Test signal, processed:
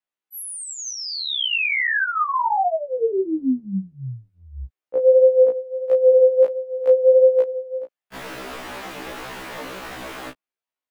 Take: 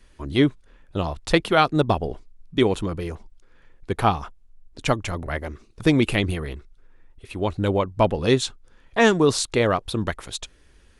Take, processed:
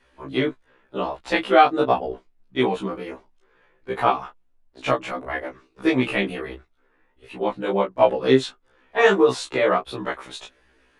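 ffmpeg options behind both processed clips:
-filter_complex "[0:a]flanger=delay=16.5:depth=5.9:speed=1.5,acrossover=split=230 3200:gain=0.158 1 0.251[s0][s1][s2];[s0][s1][s2]amix=inputs=3:normalize=0,afftfilt=real='re*1.73*eq(mod(b,3),0)':imag='im*1.73*eq(mod(b,3),0)':win_size=2048:overlap=0.75,volume=2.37"

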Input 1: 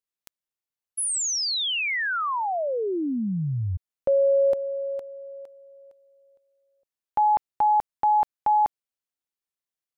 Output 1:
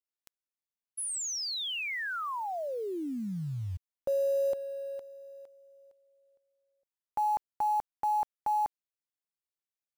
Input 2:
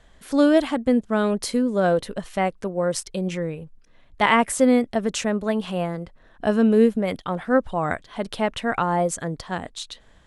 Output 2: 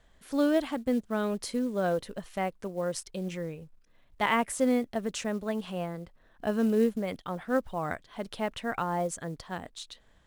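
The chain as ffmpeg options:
-af "acrusher=bits=7:mode=log:mix=0:aa=0.000001,volume=0.376"

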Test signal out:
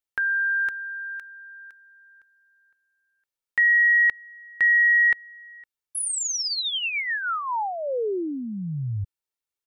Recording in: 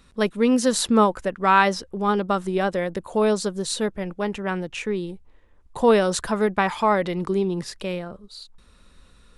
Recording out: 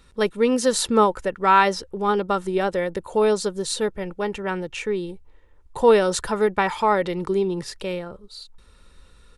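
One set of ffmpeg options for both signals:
-af "aecho=1:1:2.2:0.35"

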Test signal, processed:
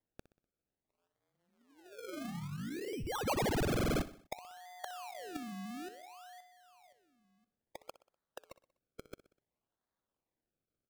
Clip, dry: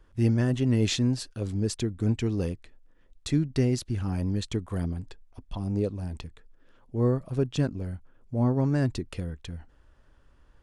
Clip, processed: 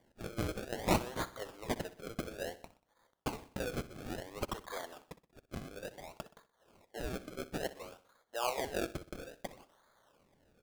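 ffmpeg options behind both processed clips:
-af "afftfilt=real='re*lt(hypot(re,im),0.224)':imag='im*lt(hypot(re,im),0.224)':win_size=1024:overlap=0.75,highpass=f=560:w=0.5412,highpass=f=560:w=1.3066,acrusher=samples=32:mix=1:aa=0.000001:lfo=1:lforange=32:lforate=0.58,aecho=1:1:62|124|186|248:0.158|0.0777|0.0381|0.0186,volume=1.26"

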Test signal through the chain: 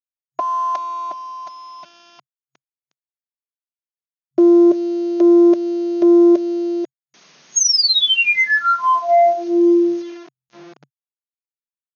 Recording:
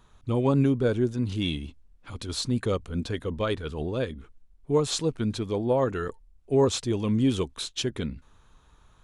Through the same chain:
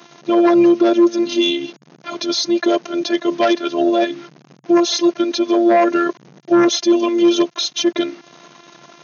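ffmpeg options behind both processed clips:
-filter_complex "[0:a]acrossover=split=240[s0][s1];[s0]acompressor=threshold=0.00631:ratio=10[s2];[s2][s1]amix=inputs=2:normalize=0,afftfilt=real='hypot(re,im)*cos(PI*b)':imag='0':win_size=512:overlap=0.75,equalizer=f=590:t=o:w=0.33:g=14,aeval=exprs='0.2*sin(PI/2*2.24*val(0)/0.2)':c=same,crystalizer=i=1.5:c=0,acrusher=bits=7:mix=0:aa=0.000001,afftfilt=real='re*between(b*sr/4096,130,6700)':imag='im*between(b*sr/4096,130,6700)':win_size=4096:overlap=0.75,alimiter=limit=0.158:level=0:latency=1:release=145,lowshelf=f=210:g=7.5,volume=2.37"

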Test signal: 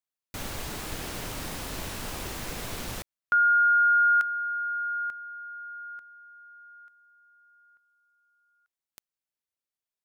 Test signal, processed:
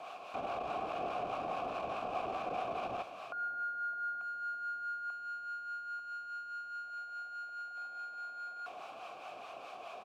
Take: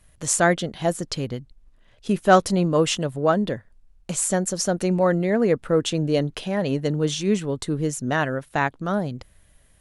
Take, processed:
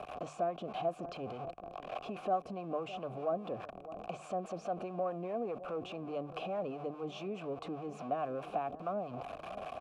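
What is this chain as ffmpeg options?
-filter_complex "[0:a]aeval=exprs='val(0)+0.5*0.0355*sgn(val(0))':c=same,acrossover=split=380|7100[s0][s1][s2];[s0]acompressor=threshold=0.0708:ratio=2[s3];[s1]acompressor=threshold=0.02:ratio=2.5[s4];[s2]acompressor=threshold=0.00282:ratio=2[s5];[s3][s4][s5]amix=inputs=3:normalize=0,asplit=2[s6][s7];[s7]adelay=611,lowpass=f=1100:p=1,volume=0.0891,asplit=2[s8][s9];[s9]adelay=611,lowpass=f=1100:p=1,volume=0.54,asplit=2[s10][s11];[s11]adelay=611,lowpass=f=1100:p=1,volume=0.54,asplit=2[s12][s13];[s13]adelay=611,lowpass=f=1100:p=1,volume=0.54[s14];[s8][s10][s12][s14]amix=inputs=4:normalize=0[s15];[s6][s15]amix=inputs=2:normalize=0,acompressor=threshold=0.0355:ratio=4:attack=0.51:release=20:knee=1,acrossover=split=660[s16][s17];[s16]aeval=exprs='val(0)*(1-0.5/2+0.5/2*cos(2*PI*4.8*n/s))':c=same[s18];[s17]aeval=exprs='val(0)*(1-0.5/2-0.5/2*cos(2*PI*4.8*n/s))':c=same[s19];[s18][s19]amix=inputs=2:normalize=0,asplit=3[s20][s21][s22];[s20]bandpass=f=730:t=q:w=8,volume=1[s23];[s21]bandpass=f=1090:t=q:w=8,volume=0.501[s24];[s22]bandpass=f=2440:t=q:w=8,volume=0.355[s25];[s23][s24][s25]amix=inputs=3:normalize=0,highshelf=f=2000:g=-11.5,bandreject=f=50:t=h:w=6,bandreject=f=100:t=h:w=6,bandreject=f=150:t=h:w=6,volume=5.62"

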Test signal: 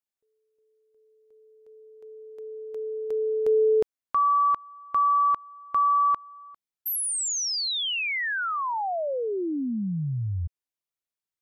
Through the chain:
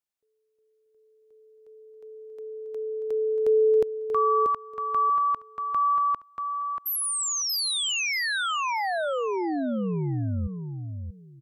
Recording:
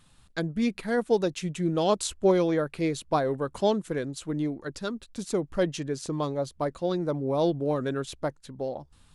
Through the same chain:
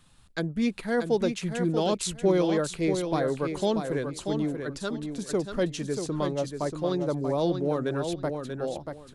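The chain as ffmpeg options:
-filter_complex "[0:a]acrossover=split=420|1900[s0][s1][s2];[s1]alimiter=limit=0.0794:level=0:latency=1[s3];[s0][s3][s2]amix=inputs=3:normalize=0,aecho=1:1:635|1270|1905:0.473|0.0946|0.0189"

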